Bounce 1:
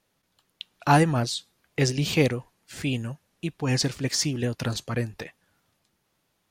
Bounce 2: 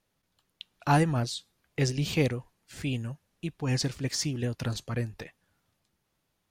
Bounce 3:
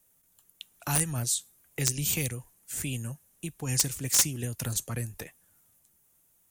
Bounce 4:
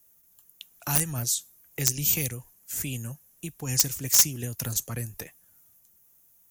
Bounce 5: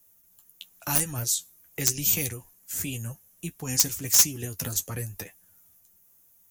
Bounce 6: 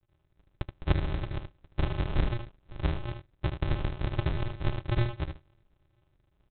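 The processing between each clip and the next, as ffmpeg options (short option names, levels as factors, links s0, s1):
-af "lowshelf=f=97:g=8.5,volume=0.531"
-filter_complex "[0:a]acrossover=split=130|2000[s0][s1][s2];[s1]acompressor=threshold=0.0178:ratio=6[s3];[s0][s3][s2]amix=inputs=3:normalize=0,aexciter=amount=8.2:drive=4.6:freq=6600,aeval=exprs='(mod(3.98*val(0)+1,2)-1)/3.98':c=same"
-af "aexciter=amount=1.8:drive=2.3:freq=5200"
-af "flanger=delay=9.8:depth=2.1:regen=30:speed=0.96:shape=triangular,volume=1.68"
-filter_complex "[0:a]asplit=2[s0][s1];[s1]highpass=f=720:p=1,volume=25.1,asoftclip=type=tanh:threshold=0.891[s2];[s0][s2]amix=inputs=2:normalize=0,lowpass=f=2400:p=1,volume=0.501,aresample=8000,acrusher=samples=34:mix=1:aa=0.000001,aresample=44100,aecho=1:1:76:0.398,volume=0.473"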